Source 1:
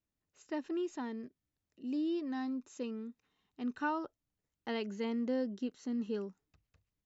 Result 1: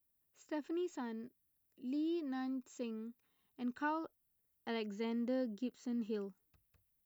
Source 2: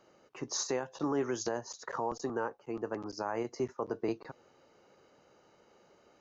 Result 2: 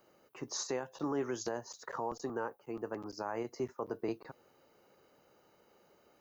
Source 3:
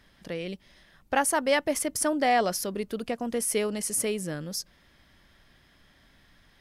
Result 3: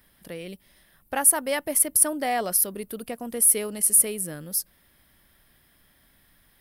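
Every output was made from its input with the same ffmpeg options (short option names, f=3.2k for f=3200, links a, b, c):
-af "aexciter=amount=9.9:drive=2.8:freq=9k,volume=-3dB"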